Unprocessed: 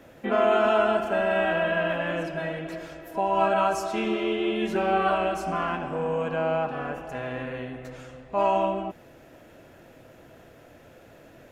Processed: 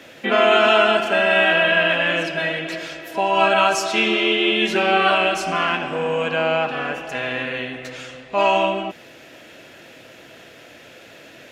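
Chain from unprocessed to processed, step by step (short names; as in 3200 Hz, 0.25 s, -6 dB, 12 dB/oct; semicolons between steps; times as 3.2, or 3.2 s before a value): weighting filter D; gain +5.5 dB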